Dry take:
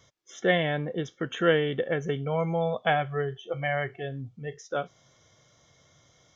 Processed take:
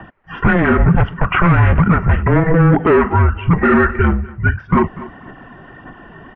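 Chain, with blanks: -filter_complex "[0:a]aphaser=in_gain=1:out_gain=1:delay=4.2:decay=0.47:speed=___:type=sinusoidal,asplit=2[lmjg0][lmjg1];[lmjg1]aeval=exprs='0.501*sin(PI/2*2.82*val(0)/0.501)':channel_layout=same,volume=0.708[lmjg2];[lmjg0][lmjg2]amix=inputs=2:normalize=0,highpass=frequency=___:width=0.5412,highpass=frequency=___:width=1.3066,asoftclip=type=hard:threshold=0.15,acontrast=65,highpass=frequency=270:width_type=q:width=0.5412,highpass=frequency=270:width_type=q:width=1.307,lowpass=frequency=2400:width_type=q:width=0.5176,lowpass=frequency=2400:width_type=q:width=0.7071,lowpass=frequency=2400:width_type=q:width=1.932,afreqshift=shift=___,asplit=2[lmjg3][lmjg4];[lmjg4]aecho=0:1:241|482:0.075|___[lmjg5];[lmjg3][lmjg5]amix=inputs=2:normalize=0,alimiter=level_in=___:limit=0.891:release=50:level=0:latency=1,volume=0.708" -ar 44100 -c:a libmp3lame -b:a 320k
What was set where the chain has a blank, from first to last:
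1.7, 100, 100, -340, 0.0157, 3.55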